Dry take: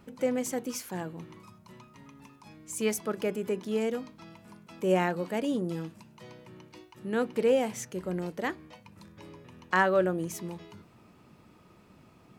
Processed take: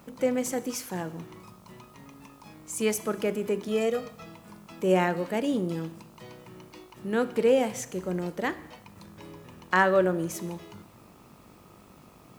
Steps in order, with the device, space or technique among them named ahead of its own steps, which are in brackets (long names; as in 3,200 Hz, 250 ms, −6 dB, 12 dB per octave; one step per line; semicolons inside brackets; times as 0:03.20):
0:03.68–0:04.26: comb filter 1.6 ms, depth 84%
four-comb reverb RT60 0.94 s, combs from 27 ms, DRR 15 dB
video cassette with head-switching buzz (hum with harmonics 50 Hz, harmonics 27, −62 dBFS −1 dB per octave; white noise bed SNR 35 dB)
level +2.5 dB